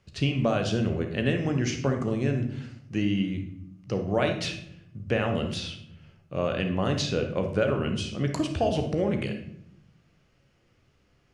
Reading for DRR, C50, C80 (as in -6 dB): 4.0 dB, 7.0 dB, 11.5 dB